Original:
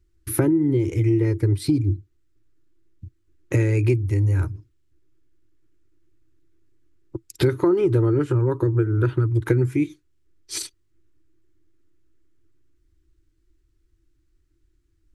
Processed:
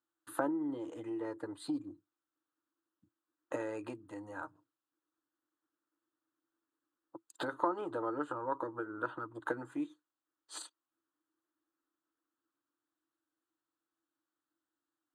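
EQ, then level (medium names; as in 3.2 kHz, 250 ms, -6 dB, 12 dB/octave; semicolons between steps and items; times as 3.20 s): boxcar filter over 8 samples; high-pass 330 Hz 24 dB/octave; static phaser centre 930 Hz, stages 4; 0.0 dB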